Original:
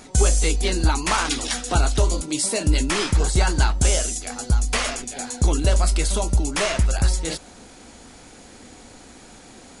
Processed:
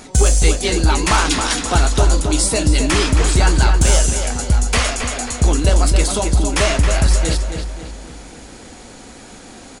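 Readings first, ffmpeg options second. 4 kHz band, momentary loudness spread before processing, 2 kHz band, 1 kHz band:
+5.5 dB, 6 LU, +6.0 dB, +6.0 dB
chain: -filter_complex "[0:a]acontrast=66,asplit=2[a][b];[b]adelay=270,lowpass=f=4k:p=1,volume=-6dB,asplit=2[c][d];[d]adelay=270,lowpass=f=4k:p=1,volume=0.46,asplit=2[e][f];[f]adelay=270,lowpass=f=4k:p=1,volume=0.46,asplit=2[g][h];[h]adelay=270,lowpass=f=4k:p=1,volume=0.46,asplit=2[i][j];[j]adelay=270,lowpass=f=4k:p=1,volume=0.46,asplit=2[k][l];[l]adelay=270,lowpass=f=4k:p=1,volume=0.46[m];[a][c][e][g][i][k][m]amix=inputs=7:normalize=0,volume=-1dB"

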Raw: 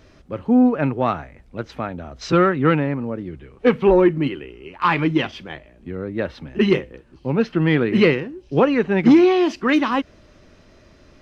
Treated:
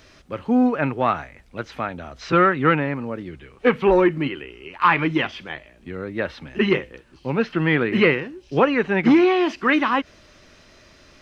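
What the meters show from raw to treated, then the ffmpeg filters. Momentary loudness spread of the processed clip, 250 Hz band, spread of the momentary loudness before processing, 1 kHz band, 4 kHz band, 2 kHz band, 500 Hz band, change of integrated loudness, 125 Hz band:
18 LU, -3.0 dB, 19 LU, +1.5 dB, -0.5 dB, +3.0 dB, -2.0 dB, -1.5 dB, -3.5 dB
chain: -filter_complex "[0:a]tiltshelf=f=970:g=-5.5,acrossover=split=2700[a][b];[b]acompressor=threshold=-44dB:ratio=4:attack=1:release=60[c];[a][c]amix=inputs=2:normalize=0,volume=1.5dB"

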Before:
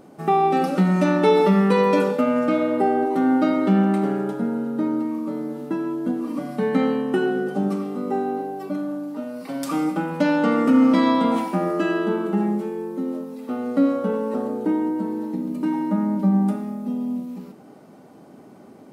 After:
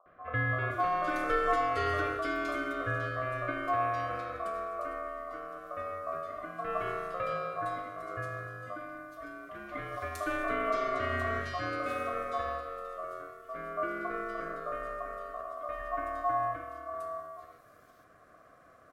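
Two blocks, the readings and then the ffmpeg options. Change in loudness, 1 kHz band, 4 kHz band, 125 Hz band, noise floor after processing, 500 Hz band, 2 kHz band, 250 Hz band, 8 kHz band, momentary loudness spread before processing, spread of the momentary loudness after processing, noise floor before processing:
-12.5 dB, -7.0 dB, -10.5 dB, -13.0 dB, -59 dBFS, -12.5 dB, -2.5 dB, -24.5 dB, n/a, 12 LU, 12 LU, -46 dBFS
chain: -filter_complex "[0:a]acrossover=split=310|2500[a][b][c];[b]adelay=60[d];[c]adelay=520[e];[a][d][e]amix=inputs=3:normalize=0,aeval=exprs='val(0)*sin(2*PI*900*n/s)':c=same,volume=-8dB"

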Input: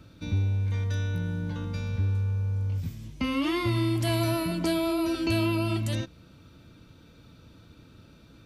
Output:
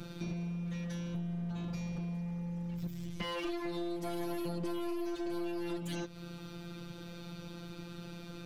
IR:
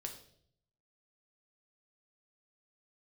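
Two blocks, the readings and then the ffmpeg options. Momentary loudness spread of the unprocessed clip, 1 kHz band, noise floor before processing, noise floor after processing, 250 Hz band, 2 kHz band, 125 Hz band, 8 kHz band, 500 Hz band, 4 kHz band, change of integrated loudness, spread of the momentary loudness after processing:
7 LU, -9.0 dB, -54 dBFS, -48 dBFS, -7.5 dB, -11.0 dB, -13.0 dB, -10.0 dB, -7.5 dB, -10.0 dB, -11.0 dB, 9 LU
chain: -af "afftfilt=real='hypot(re,im)*cos(PI*b)':imag='0':win_size=1024:overlap=0.75,aeval=exprs='clip(val(0),-1,0.0141)':c=same,acompressor=threshold=-49dB:ratio=4,volume=11.5dB"

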